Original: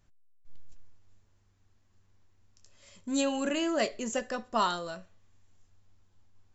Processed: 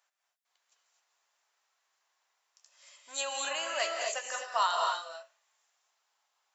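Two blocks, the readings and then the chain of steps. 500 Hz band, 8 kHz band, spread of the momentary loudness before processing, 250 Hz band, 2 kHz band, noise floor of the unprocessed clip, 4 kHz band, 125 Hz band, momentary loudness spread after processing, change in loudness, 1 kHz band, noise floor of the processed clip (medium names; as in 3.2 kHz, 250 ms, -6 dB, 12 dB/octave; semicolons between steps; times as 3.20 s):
-5.0 dB, no reading, 12 LU, -27.0 dB, +2.5 dB, -67 dBFS, +2.5 dB, under -40 dB, 11 LU, -1.0 dB, +2.0 dB, -82 dBFS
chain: high-pass 710 Hz 24 dB/octave; gated-style reverb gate 280 ms rising, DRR 1 dB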